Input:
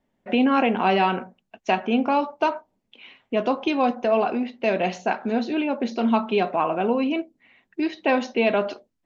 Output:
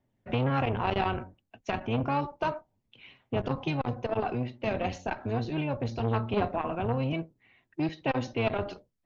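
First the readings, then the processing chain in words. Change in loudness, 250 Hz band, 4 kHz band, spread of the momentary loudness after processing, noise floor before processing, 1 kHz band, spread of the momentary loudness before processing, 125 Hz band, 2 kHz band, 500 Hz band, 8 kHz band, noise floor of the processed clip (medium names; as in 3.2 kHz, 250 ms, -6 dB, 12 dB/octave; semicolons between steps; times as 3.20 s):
-8.0 dB, -9.5 dB, -8.0 dB, 7 LU, -75 dBFS, -8.5 dB, 8 LU, +8.0 dB, -8.5 dB, -8.5 dB, no reading, -78 dBFS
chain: octave divider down 1 oct, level +2 dB; phaser 0.31 Hz, delay 4 ms, feedback 26%; transformer saturation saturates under 610 Hz; trim -6.5 dB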